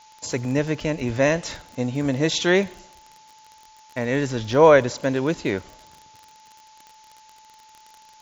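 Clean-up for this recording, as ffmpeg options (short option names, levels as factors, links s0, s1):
-af "adeclick=t=4,bandreject=f=870:w=30,afftdn=nr=16:nf=-51"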